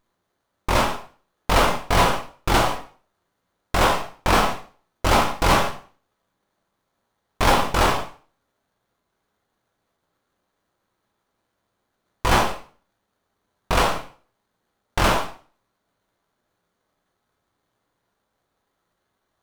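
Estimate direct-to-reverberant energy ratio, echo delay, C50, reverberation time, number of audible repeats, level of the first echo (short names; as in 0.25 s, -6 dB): 2.0 dB, none, 8.5 dB, 0.40 s, none, none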